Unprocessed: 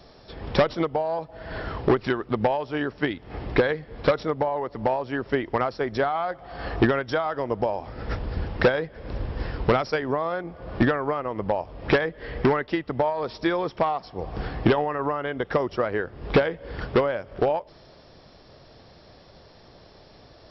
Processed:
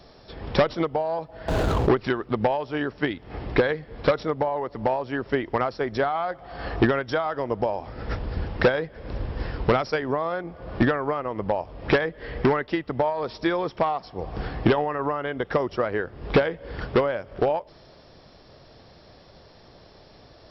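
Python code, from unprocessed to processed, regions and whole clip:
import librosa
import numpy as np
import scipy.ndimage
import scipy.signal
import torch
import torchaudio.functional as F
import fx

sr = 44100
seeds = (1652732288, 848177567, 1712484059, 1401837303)

y = fx.chain(x, sr, fx.median_filter(points=25),
    fx.env_flatten(amount_pct=70), at=(1.48, 1.89))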